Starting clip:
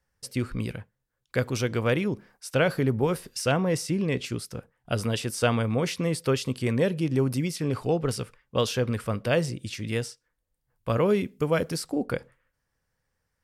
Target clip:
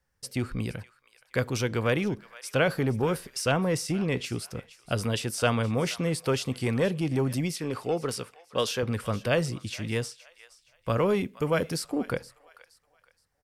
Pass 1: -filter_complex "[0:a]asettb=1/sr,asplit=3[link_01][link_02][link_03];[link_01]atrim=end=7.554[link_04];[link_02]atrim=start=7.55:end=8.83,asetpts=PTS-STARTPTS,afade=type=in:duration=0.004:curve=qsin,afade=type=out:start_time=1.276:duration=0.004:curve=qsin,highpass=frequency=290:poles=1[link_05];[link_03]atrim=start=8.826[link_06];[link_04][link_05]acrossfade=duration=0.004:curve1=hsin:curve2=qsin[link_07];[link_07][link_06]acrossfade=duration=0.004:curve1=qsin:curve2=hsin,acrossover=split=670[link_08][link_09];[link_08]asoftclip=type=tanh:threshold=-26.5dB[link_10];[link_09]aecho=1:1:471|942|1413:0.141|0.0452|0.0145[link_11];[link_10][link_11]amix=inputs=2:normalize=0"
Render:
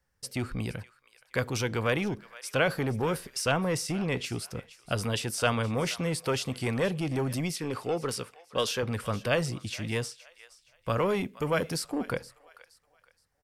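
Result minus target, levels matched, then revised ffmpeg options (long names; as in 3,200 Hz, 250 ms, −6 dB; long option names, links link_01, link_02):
soft clipping: distortion +7 dB
-filter_complex "[0:a]asettb=1/sr,asplit=3[link_01][link_02][link_03];[link_01]atrim=end=7.554[link_04];[link_02]atrim=start=7.55:end=8.83,asetpts=PTS-STARTPTS,afade=type=in:duration=0.004:curve=qsin,afade=type=out:start_time=1.276:duration=0.004:curve=qsin,highpass=frequency=290:poles=1[link_05];[link_03]atrim=start=8.826[link_06];[link_04][link_05]acrossfade=duration=0.004:curve1=hsin:curve2=qsin[link_07];[link_07][link_06]acrossfade=duration=0.004:curve1=qsin:curve2=hsin,acrossover=split=670[link_08][link_09];[link_08]asoftclip=type=tanh:threshold=-20dB[link_10];[link_09]aecho=1:1:471|942|1413:0.141|0.0452|0.0145[link_11];[link_10][link_11]amix=inputs=2:normalize=0"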